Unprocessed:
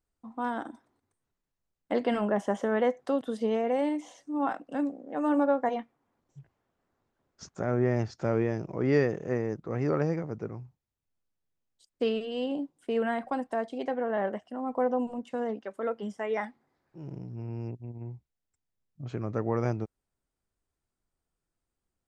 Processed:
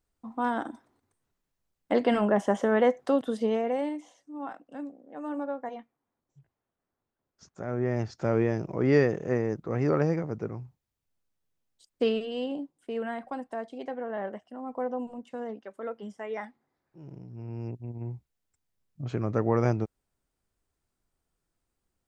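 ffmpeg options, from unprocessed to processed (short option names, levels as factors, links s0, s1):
-af "volume=14.1,afade=t=out:st=3.2:d=0.96:silence=0.251189,afade=t=in:st=7.45:d=1:silence=0.281838,afade=t=out:st=12.04:d=0.71:silence=0.446684,afade=t=in:st=17.27:d=0.82:silence=0.375837"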